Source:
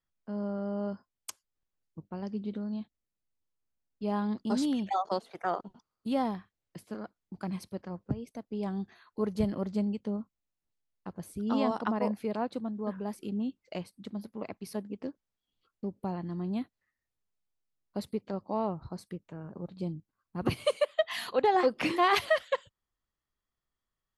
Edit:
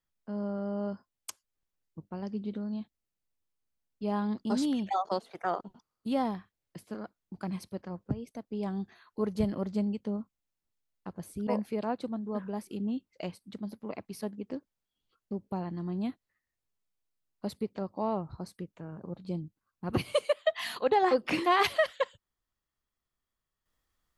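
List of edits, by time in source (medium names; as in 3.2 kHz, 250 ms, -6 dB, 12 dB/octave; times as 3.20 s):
11.47–11.99 s: delete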